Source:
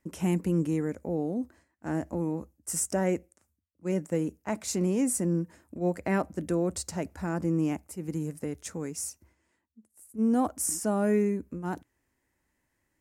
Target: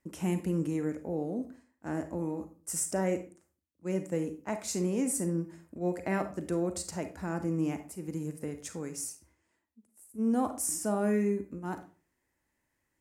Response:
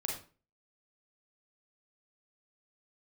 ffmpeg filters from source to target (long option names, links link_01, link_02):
-filter_complex "[0:a]asplit=2[link_01][link_02];[1:a]atrim=start_sample=2205,lowshelf=frequency=150:gain=-9[link_03];[link_02][link_03]afir=irnorm=-1:irlink=0,volume=-4dB[link_04];[link_01][link_04]amix=inputs=2:normalize=0,volume=-6.5dB"